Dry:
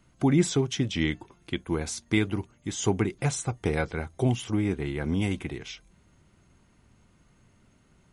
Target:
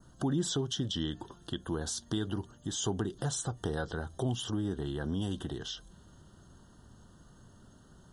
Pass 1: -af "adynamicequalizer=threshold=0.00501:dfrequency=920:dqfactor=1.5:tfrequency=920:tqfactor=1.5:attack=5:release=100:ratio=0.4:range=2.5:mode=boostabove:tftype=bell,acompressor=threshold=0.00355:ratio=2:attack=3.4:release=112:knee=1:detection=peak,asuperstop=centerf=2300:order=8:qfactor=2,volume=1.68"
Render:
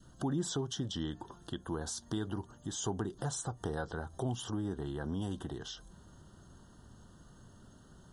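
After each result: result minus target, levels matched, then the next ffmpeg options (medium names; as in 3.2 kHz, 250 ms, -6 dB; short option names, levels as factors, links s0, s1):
compression: peak gain reduction +3.5 dB; 1 kHz band +3.0 dB
-af "adynamicequalizer=threshold=0.00501:dfrequency=920:dqfactor=1.5:tfrequency=920:tqfactor=1.5:attack=5:release=100:ratio=0.4:range=2.5:mode=boostabove:tftype=bell,acompressor=threshold=0.0075:ratio=2:attack=3.4:release=112:knee=1:detection=peak,asuperstop=centerf=2300:order=8:qfactor=2,volume=1.68"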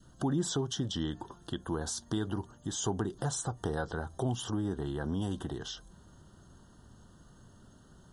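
1 kHz band +3.0 dB
-af "adynamicequalizer=threshold=0.00501:dfrequency=3100:dqfactor=1.5:tfrequency=3100:tqfactor=1.5:attack=5:release=100:ratio=0.4:range=2.5:mode=boostabove:tftype=bell,acompressor=threshold=0.0075:ratio=2:attack=3.4:release=112:knee=1:detection=peak,asuperstop=centerf=2300:order=8:qfactor=2,volume=1.68"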